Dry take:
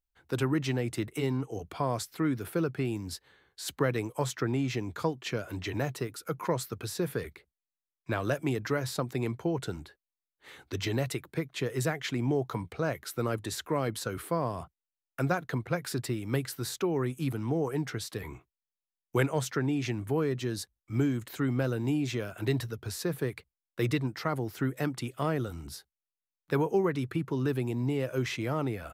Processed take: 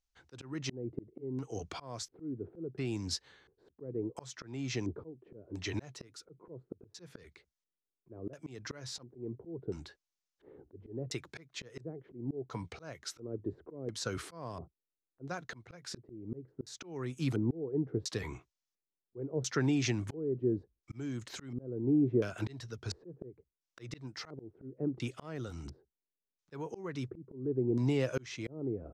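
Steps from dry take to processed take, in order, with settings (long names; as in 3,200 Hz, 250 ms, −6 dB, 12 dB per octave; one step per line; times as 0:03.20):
auto-filter low-pass square 0.72 Hz 400–6,100 Hz
volume swells 515 ms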